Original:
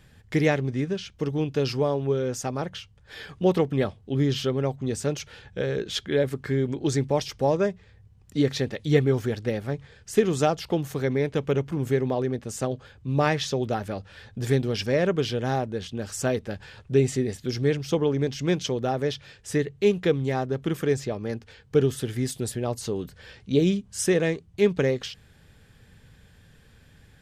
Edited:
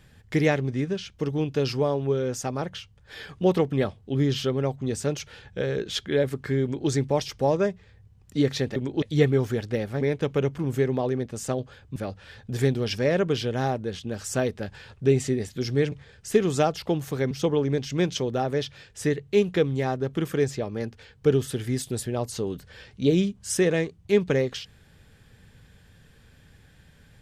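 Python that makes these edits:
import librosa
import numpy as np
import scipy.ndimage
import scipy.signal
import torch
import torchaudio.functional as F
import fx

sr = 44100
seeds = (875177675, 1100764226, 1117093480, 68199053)

y = fx.edit(x, sr, fx.duplicate(start_s=6.63, length_s=0.26, to_s=8.76),
    fx.move(start_s=9.75, length_s=1.39, to_s=17.8),
    fx.cut(start_s=13.09, length_s=0.75), tone=tone)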